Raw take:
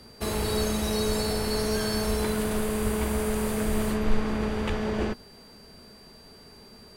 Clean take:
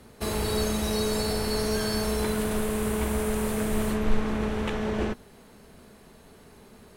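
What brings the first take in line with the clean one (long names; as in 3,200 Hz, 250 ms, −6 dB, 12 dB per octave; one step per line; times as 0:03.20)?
notch filter 4,700 Hz, Q 30
high-pass at the plosives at 0:01.06/0:02.08/0:02.83/0:03.65/0:04.68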